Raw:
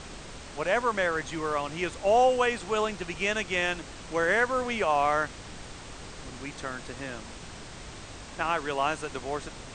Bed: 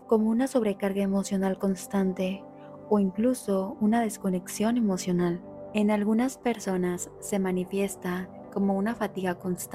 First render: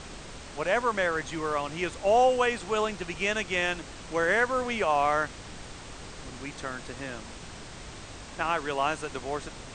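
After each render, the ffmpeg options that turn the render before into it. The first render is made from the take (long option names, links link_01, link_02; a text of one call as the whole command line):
ffmpeg -i in.wav -af anull out.wav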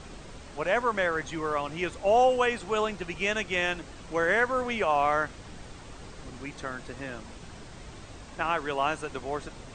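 ffmpeg -i in.wav -af "afftdn=noise_reduction=6:noise_floor=-44" out.wav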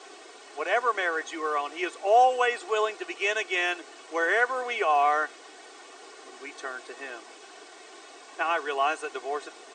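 ffmpeg -i in.wav -af "highpass=frequency=380:width=0.5412,highpass=frequency=380:width=1.3066,aecho=1:1:2.7:0.65" out.wav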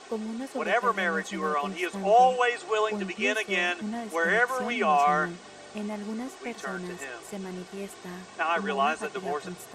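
ffmpeg -i in.wav -i bed.wav -filter_complex "[1:a]volume=-10dB[link_01];[0:a][link_01]amix=inputs=2:normalize=0" out.wav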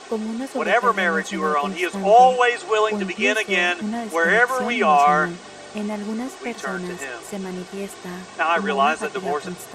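ffmpeg -i in.wav -af "volume=7dB" out.wav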